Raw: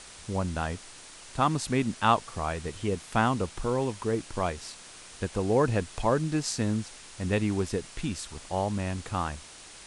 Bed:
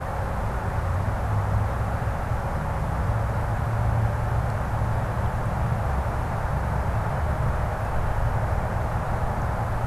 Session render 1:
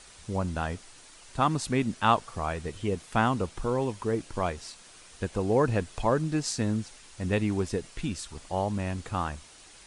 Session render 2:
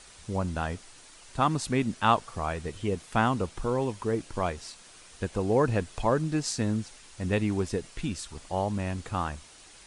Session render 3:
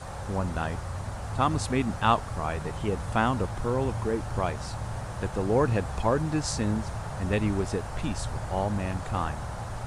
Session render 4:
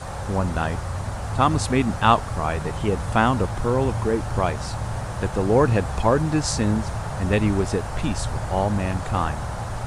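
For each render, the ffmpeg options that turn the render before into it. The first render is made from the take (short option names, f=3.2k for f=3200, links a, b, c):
-af "afftdn=nr=6:nf=-48"
-af anull
-filter_complex "[1:a]volume=-9.5dB[a];[0:a][a]amix=inputs=2:normalize=0"
-af "volume=6dB"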